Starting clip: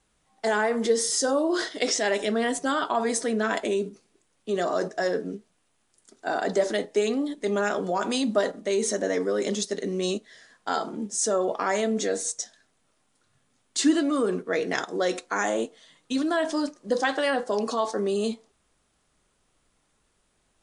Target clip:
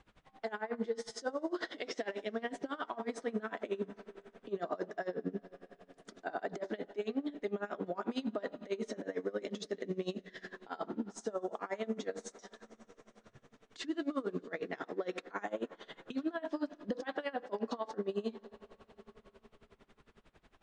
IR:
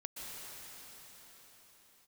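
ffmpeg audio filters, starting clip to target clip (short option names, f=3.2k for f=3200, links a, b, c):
-filter_complex "[0:a]acompressor=threshold=-40dB:ratio=6,lowpass=3k,asplit=2[a][b];[1:a]atrim=start_sample=2205[c];[b][c]afir=irnorm=-1:irlink=0,volume=-14.5dB[d];[a][d]amix=inputs=2:normalize=0,alimiter=level_in=11dB:limit=-24dB:level=0:latency=1:release=37,volume=-11dB,aeval=exprs='val(0)*pow(10,-22*(0.5-0.5*cos(2*PI*11*n/s))/20)':c=same,volume=10.5dB"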